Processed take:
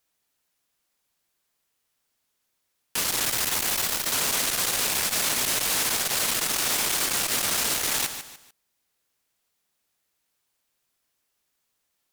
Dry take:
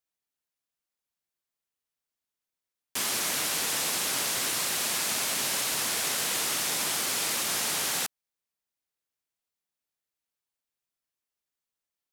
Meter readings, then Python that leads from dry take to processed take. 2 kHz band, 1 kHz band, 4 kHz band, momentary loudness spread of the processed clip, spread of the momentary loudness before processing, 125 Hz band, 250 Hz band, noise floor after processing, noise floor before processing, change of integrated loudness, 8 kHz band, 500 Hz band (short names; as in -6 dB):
+3.0 dB, +3.0 dB, +3.0 dB, 3 LU, 2 LU, +5.0 dB, +3.0 dB, -77 dBFS, under -85 dBFS, +3.5 dB, +3.0 dB, +3.0 dB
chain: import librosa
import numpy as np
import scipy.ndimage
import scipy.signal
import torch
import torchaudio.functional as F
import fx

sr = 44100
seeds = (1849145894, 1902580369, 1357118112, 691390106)

p1 = fx.rider(x, sr, range_db=10, speed_s=0.5)
p2 = fx.spec_box(p1, sr, start_s=3.24, length_s=0.88, low_hz=860.0, high_hz=6800.0, gain_db=8)
p3 = fx.fold_sine(p2, sr, drive_db=17, ceiling_db=-12.0)
p4 = p3 + fx.echo_feedback(p3, sr, ms=148, feedback_pct=33, wet_db=-11.5, dry=0)
p5 = fx.transformer_sat(p4, sr, knee_hz=700.0)
y = p5 * librosa.db_to_amplitude(-8.5)